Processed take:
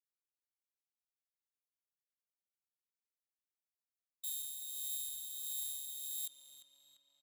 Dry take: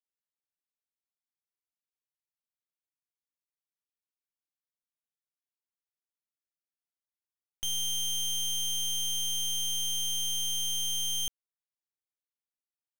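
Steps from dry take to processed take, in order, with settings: differentiator; formant shift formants +3 st; rotary cabinet horn 6 Hz, later 0.85 Hz, at 6.53 s; tempo 1.8×; tape echo 345 ms, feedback 73%, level -8 dB, low-pass 3.6 kHz; trim -5.5 dB

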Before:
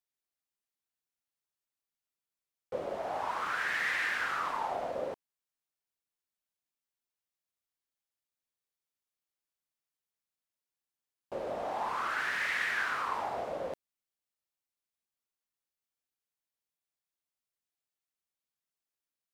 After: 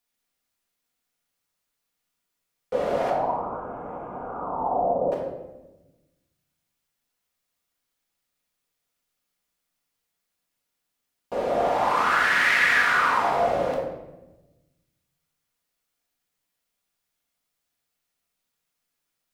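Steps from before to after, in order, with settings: 3.10–5.12 s: inverse Chebyshev low-pass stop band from 1.7 kHz, stop band 40 dB; simulated room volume 460 m³, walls mixed, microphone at 1.8 m; trim +8 dB

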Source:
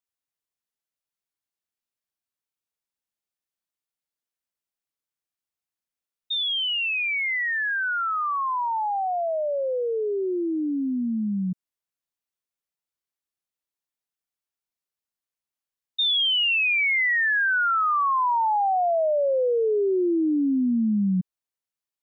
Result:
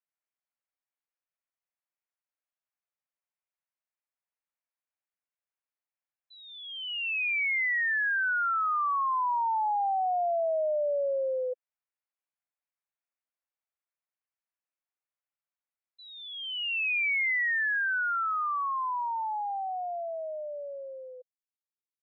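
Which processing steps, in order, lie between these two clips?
fade out at the end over 6.91 s; mistuned SSB +320 Hz 190–2300 Hz; trim -2 dB

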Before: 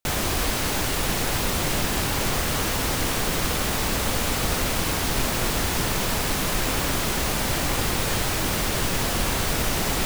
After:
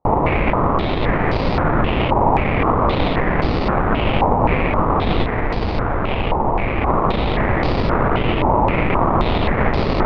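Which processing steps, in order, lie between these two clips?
5.24–6.88 s: Chebyshev band-stop 110–1500 Hz, order 3; sample-rate reducer 1.6 kHz, jitter 20%; distance through air 350 m; step-sequenced low-pass 3.8 Hz 920–4700 Hz; trim +7 dB

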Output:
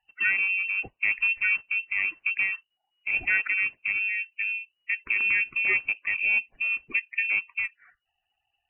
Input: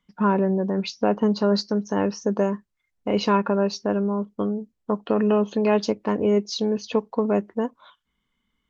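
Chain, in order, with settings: coarse spectral quantiser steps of 30 dB; frequency inversion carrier 2.9 kHz; trim -4 dB

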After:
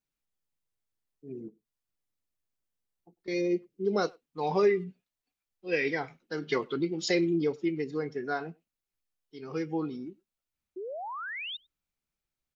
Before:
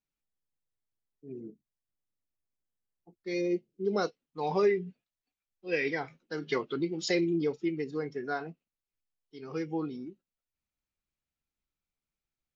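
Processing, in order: 1.48–3.28 s: compression, threshold -56 dBFS, peak gain reduction 14.5 dB; 10.76–11.57 s: painted sound rise 350–3800 Hz -39 dBFS; speakerphone echo 100 ms, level -26 dB; trim +1.5 dB

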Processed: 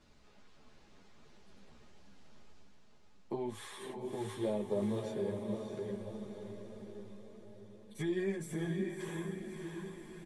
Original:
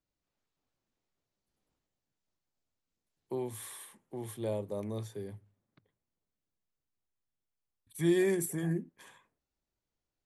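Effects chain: reverse; upward compressor, threshold -48 dBFS; reverse; distance through air 93 m; compression 10:1, threshold -36 dBFS, peak gain reduction 14 dB; comb 4.8 ms, depth 31%; on a send: echo that smears into a reverb 625 ms, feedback 54%, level -4 dB; on the sum: three-phase chorus; trim +7 dB

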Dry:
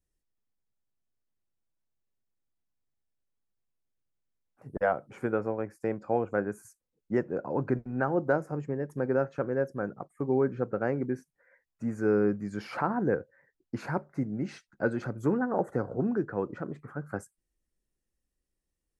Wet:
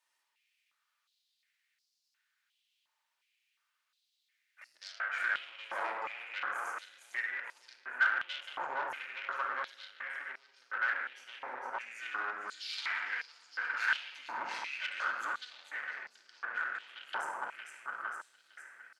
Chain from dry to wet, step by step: feedback delay 458 ms, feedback 57%, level -9.5 dB; compression 2.5:1, threshold -46 dBFS, peak gain reduction 17 dB; peaking EQ 2.8 kHz +11.5 dB 2.4 oct; simulated room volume 2000 m³, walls mixed, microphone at 2.6 m; valve stage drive 34 dB, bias 0.75; step-sequenced high-pass 2.8 Hz 950–4900 Hz; trim +5.5 dB

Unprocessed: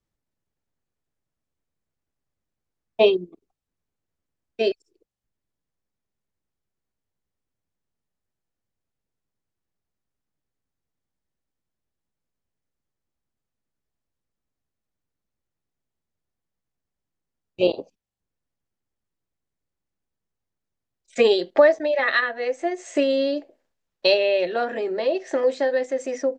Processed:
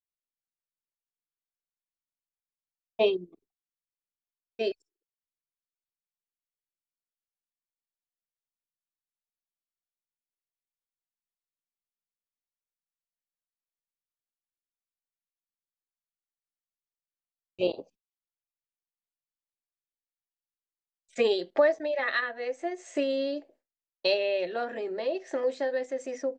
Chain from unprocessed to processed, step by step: gate with hold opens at -47 dBFS; trim -7.5 dB

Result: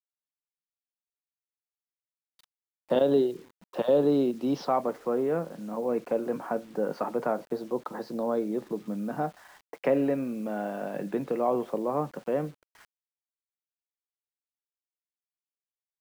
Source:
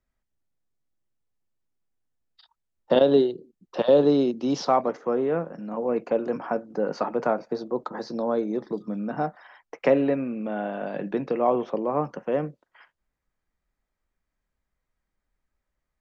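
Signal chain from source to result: low-pass 4.8 kHz 12 dB/octave; treble shelf 2.1 kHz -4 dB; in parallel at -2 dB: peak limiter -16 dBFS, peak gain reduction 7.5 dB; on the sum: bit crusher 8-bit; trim -7.5 dB

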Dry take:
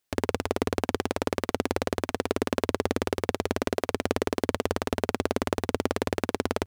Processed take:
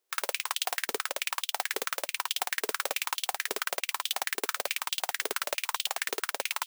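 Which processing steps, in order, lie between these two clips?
formants flattened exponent 0.1; saturation -11 dBFS, distortion -5 dB; formant shift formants +2 st; step-sequenced high-pass 9.2 Hz 420–3200 Hz; trim -2 dB

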